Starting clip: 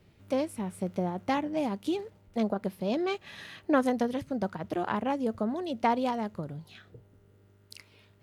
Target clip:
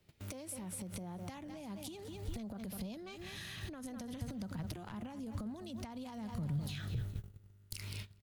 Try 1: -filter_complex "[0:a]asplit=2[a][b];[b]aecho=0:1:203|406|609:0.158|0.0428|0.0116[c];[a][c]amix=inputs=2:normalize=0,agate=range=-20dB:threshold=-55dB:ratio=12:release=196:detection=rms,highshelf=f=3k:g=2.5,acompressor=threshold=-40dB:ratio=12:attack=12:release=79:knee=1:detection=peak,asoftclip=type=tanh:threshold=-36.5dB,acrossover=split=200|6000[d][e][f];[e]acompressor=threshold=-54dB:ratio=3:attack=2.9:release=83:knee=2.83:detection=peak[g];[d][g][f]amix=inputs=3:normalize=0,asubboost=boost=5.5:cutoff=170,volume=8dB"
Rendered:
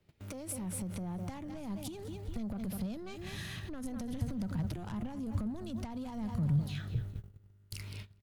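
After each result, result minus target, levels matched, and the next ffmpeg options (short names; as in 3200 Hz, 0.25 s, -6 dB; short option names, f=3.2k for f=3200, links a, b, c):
compressor: peak gain reduction -9.5 dB; 8000 Hz band -2.5 dB
-filter_complex "[0:a]asplit=2[a][b];[b]aecho=0:1:203|406|609:0.158|0.0428|0.0116[c];[a][c]amix=inputs=2:normalize=0,agate=range=-20dB:threshold=-55dB:ratio=12:release=196:detection=rms,highshelf=f=3k:g=2.5,acompressor=threshold=-50dB:ratio=12:attack=12:release=79:knee=1:detection=peak,asoftclip=type=tanh:threshold=-36.5dB,acrossover=split=200|6000[d][e][f];[e]acompressor=threshold=-54dB:ratio=3:attack=2.9:release=83:knee=2.83:detection=peak[g];[d][g][f]amix=inputs=3:normalize=0,asubboost=boost=5.5:cutoff=170,volume=8dB"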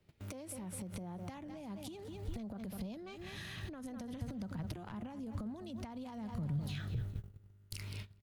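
8000 Hz band -3.5 dB
-filter_complex "[0:a]asplit=2[a][b];[b]aecho=0:1:203|406|609:0.158|0.0428|0.0116[c];[a][c]amix=inputs=2:normalize=0,agate=range=-20dB:threshold=-55dB:ratio=12:release=196:detection=rms,highshelf=f=3k:g=10,acompressor=threshold=-50dB:ratio=12:attack=12:release=79:knee=1:detection=peak,asoftclip=type=tanh:threshold=-36.5dB,acrossover=split=200|6000[d][e][f];[e]acompressor=threshold=-54dB:ratio=3:attack=2.9:release=83:knee=2.83:detection=peak[g];[d][g][f]amix=inputs=3:normalize=0,asubboost=boost=5.5:cutoff=170,volume=8dB"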